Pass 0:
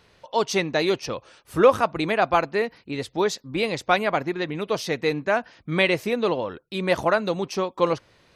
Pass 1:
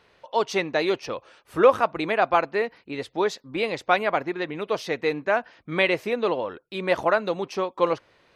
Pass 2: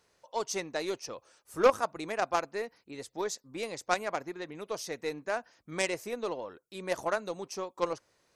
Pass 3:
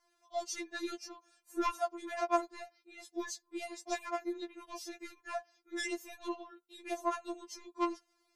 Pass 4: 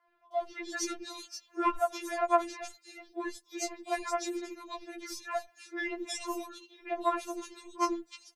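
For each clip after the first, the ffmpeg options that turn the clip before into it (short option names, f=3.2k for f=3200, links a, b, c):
-af "bass=f=250:g=-8,treble=f=4k:g=-8"
-af "aeval=exprs='0.631*(cos(1*acos(clip(val(0)/0.631,-1,1)))-cos(1*PI/2))+0.126*(cos(3*acos(clip(val(0)/0.631,-1,1)))-cos(3*PI/2))+0.00501*(cos(6*acos(clip(val(0)/0.631,-1,1)))-cos(6*PI/2))':c=same,highshelf=f=4.7k:t=q:w=1.5:g=13,volume=-3dB"
-af "afftfilt=real='re*4*eq(mod(b,16),0)':imag='im*4*eq(mod(b,16),0)':win_size=2048:overlap=0.75,volume=-3dB"
-filter_complex "[0:a]acrossover=split=340|2800[a][b][c];[a]adelay=80[d];[c]adelay=310[e];[d][b][e]amix=inputs=3:normalize=0,volume=5.5dB"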